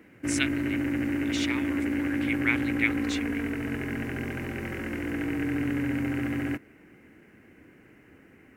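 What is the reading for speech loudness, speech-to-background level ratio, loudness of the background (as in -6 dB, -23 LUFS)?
-32.0 LUFS, -2.5 dB, -29.5 LUFS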